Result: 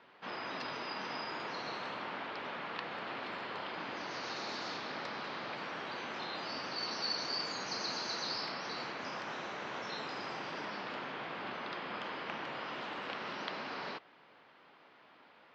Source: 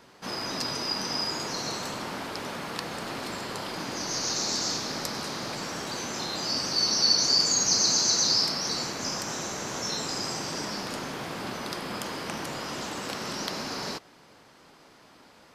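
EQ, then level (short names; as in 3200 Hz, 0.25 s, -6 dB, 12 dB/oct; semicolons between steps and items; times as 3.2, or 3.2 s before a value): HPF 100 Hz; LPF 3300 Hz 24 dB/oct; low shelf 380 Hz -11.5 dB; -3.0 dB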